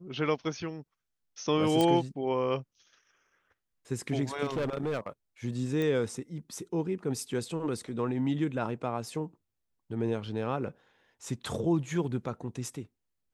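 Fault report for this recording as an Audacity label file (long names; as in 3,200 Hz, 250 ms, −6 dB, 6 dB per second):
1.810000	1.810000	click −14 dBFS
4.430000	5.100000	clipping −27.5 dBFS
5.820000	5.820000	click −20 dBFS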